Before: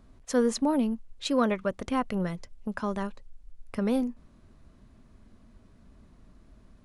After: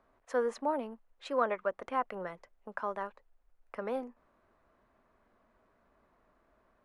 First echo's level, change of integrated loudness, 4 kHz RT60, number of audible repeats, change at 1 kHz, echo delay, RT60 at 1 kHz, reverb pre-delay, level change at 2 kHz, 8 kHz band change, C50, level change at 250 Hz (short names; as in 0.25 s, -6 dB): none, -6.5 dB, none, none, -1.0 dB, none, none, none, -3.0 dB, under -15 dB, none, -15.5 dB